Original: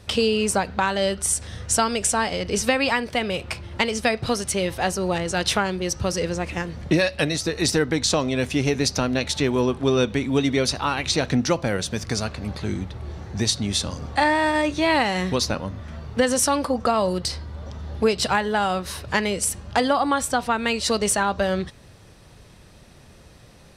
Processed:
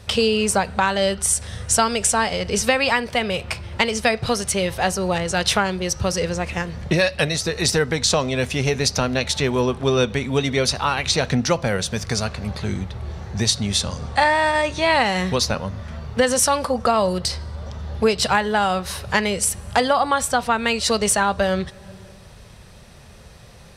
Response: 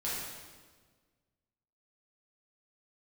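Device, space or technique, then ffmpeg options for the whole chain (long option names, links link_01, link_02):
ducked reverb: -filter_complex "[0:a]equalizer=frequency=300:width_type=o:width=0.36:gain=-11,asplit=3[link_01][link_02][link_03];[1:a]atrim=start_sample=2205[link_04];[link_02][link_04]afir=irnorm=-1:irlink=0[link_05];[link_03]apad=whole_len=1047891[link_06];[link_05][link_06]sidechaincompress=threshold=-42dB:ratio=8:attack=16:release=239,volume=-14.5dB[link_07];[link_01][link_07]amix=inputs=2:normalize=0,asettb=1/sr,asplit=3[link_08][link_09][link_10];[link_08]atrim=end=13.814[link_11];[link_09]atrim=start=13.81:end=15.06,asetpts=PTS-STARTPTS,afade=type=in:duration=0.004:curve=qsin,afade=type=out:start_time=1.246:duration=0.004:curve=qsin,lowpass=frequency=11000:width=0.5412,lowpass=frequency=11000:width=1.3066[link_12];[link_10]atrim=start=15.056[link_13];[link_11][link_12]acrossfade=duration=0.004:curve1=hsin:curve2=qsin[link_14];[link_14][link_13]acrossfade=duration=0.004:curve1=qsin:curve2=hsin,volume=3dB"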